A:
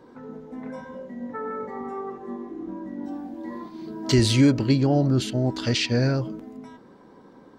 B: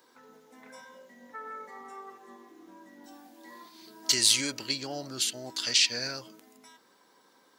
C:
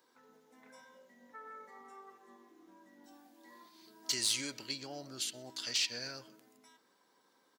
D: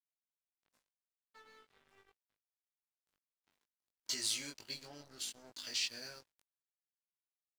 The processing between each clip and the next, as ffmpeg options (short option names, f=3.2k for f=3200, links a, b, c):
-af "aderivative,volume=8.5dB"
-filter_complex "[0:a]asoftclip=type=tanh:threshold=-12.5dB,asplit=2[a][b];[b]adelay=125,lowpass=f=3.2k:p=1,volume=-20.5dB,asplit=2[c][d];[d]adelay=125,lowpass=f=3.2k:p=1,volume=0.48,asplit=2[e][f];[f]adelay=125,lowpass=f=3.2k:p=1,volume=0.48,asplit=2[g][h];[h]adelay=125,lowpass=f=3.2k:p=1,volume=0.48[i];[a][c][e][g][i]amix=inputs=5:normalize=0,volume=-8.5dB"
-filter_complex "[0:a]aeval=exprs='sgn(val(0))*max(abs(val(0))-0.00299,0)':c=same,asplit=2[a][b];[b]adelay=20,volume=-2.5dB[c];[a][c]amix=inputs=2:normalize=0,volume=-5dB"